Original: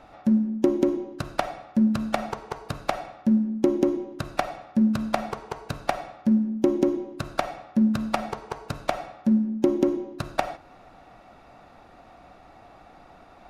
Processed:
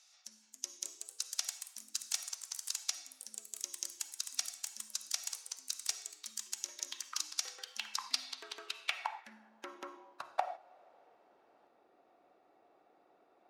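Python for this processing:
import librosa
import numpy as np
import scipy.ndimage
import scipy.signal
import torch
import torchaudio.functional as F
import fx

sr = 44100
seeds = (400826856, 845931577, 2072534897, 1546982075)

y = fx.filter_sweep_bandpass(x, sr, from_hz=6100.0, to_hz=390.0, start_s=7.82, end_s=11.31, q=2.9)
y = fx.echo_pitch(y, sr, ms=318, semitones=3, count=3, db_per_echo=-6.0)
y = scipy.signal.lfilter([1.0, -0.97], [1.0], y)
y = F.gain(torch.from_numpy(y), 13.5).numpy()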